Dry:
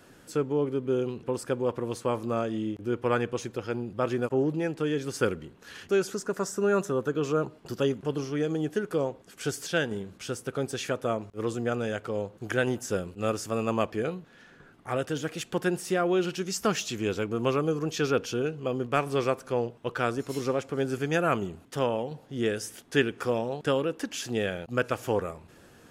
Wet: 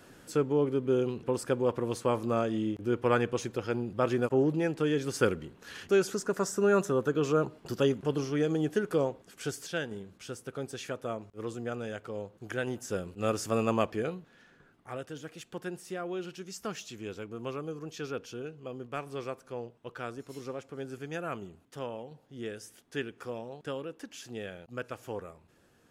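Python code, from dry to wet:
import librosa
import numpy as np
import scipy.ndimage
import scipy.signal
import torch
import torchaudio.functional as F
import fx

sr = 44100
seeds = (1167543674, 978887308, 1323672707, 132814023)

y = fx.gain(x, sr, db=fx.line((9.0, 0.0), (9.8, -7.0), (12.64, -7.0), (13.55, 1.0), (15.11, -11.0)))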